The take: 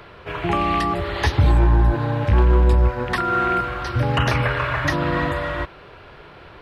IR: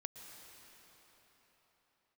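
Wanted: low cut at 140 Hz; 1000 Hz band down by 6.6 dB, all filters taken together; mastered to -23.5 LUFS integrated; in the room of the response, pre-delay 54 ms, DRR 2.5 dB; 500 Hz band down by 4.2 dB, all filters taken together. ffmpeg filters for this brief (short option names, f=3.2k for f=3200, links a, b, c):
-filter_complex "[0:a]highpass=140,equalizer=f=500:t=o:g=-3.5,equalizer=f=1k:t=o:g=-8.5,asplit=2[a][b];[1:a]atrim=start_sample=2205,adelay=54[c];[b][c]afir=irnorm=-1:irlink=0,volume=1dB[d];[a][d]amix=inputs=2:normalize=0"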